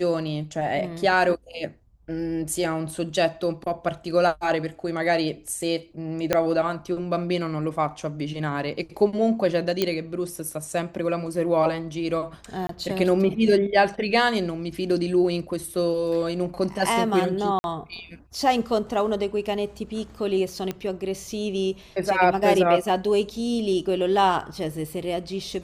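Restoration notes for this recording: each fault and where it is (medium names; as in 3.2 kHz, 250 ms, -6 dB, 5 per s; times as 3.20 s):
6.33 s: pop -6 dBFS
9.82 s: pop -8 dBFS
12.67–12.69 s: dropout 23 ms
17.59–17.64 s: dropout 51 ms
20.71 s: pop -15 dBFS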